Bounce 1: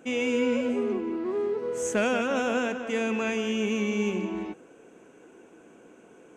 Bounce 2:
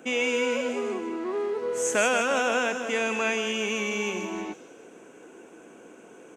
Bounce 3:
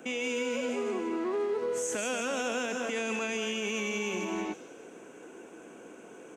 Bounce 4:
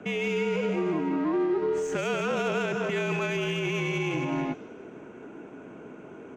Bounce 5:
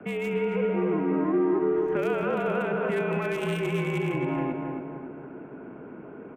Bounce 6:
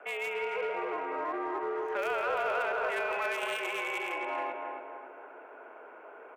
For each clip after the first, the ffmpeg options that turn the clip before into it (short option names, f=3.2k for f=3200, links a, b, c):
-filter_complex "[0:a]lowshelf=f=130:g=-10.5,acrossover=split=510|3800[a][b][c];[a]acompressor=threshold=-38dB:ratio=6[d];[c]asplit=7[e][f][g][h][i][j][k];[f]adelay=156,afreqshift=-42,volume=-3dB[l];[g]adelay=312,afreqshift=-84,volume=-9.4dB[m];[h]adelay=468,afreqshift=-126,volume=-15.8dB[n];[i]adelay=624,afreqshift=-168,volume=-22.1dB[o];[j]adelay=780,afreqshift=-210,volume=-28.5dB[p];[k]adelay=936,afreqshift=-252,volume=-34.9dB[q];[e][l][m][n][o][p][q]amix=inputs=7:normalize=0[r];[d][b][r]amix=inputs=3:normalize=0,volume=5dB"
-filter_complex "[0:a]acrossover=split=440|3000[a][b][c];[b]acompressor=threshold=-32dB:ratio=6[d];[a][d][c]amix=inputs=3:normalize=0,alimiter=limit=-24dB:level=0:latency=1"
-af "adynamicsmooth=sensitivity=2.5:basefreq=2.8k,afreqshift=-51,equalizer=f=9.9k:w=1.5:g=-2,volume=5dB"
-filter_complex "[0:a]acrossover=split=320|1000|2500[a][b][c][d];[d]acrusher=bits=4:mix=0:aa=0.5[e];[a][b][c][e]amix=inputs=4:normalize=0,asplit=2[f][g];[g]adelay=272,lowpass=f=1.8k:p=1,volume=-4dB,asplit=2[h][i];[i]adelay=272,lowpass=f=1.8k:p=1,volume=0.52,asplit=2[j][k];[k]adelay=272,lowpass=f=1.8k:p=1,volume=0.52,asplit=2[l][m];[m]adelay=272,lowpass=f=1.8k:p=1,volume=0.52,asplit=2[n][o];[o]adelay=272,lowpass=f=1.8k:p=1,volume=0.52,asplit=2[p][q];[q]adelay=272,lowpass=f=1.8k:p=1,volume=0.52,asplit=2[r][s];[s]adelay=272,lowpass=f=1.8k:p=1,volume=0.52[t];[f][h][j][l][n][p][r][t]amix=inputs=8:normalize=0"
-filter_complex "[0:a]highpass=f=570:w=0.5412,highpass=f=570:w=1.3066,asplit=2[a][b];[b]volume=30.5dB,asoftclip=hard,volume=-30.5dB,volume=-5.5dB[c];[a][c]amix=inputs=2:normalize=0,volume=-2dB"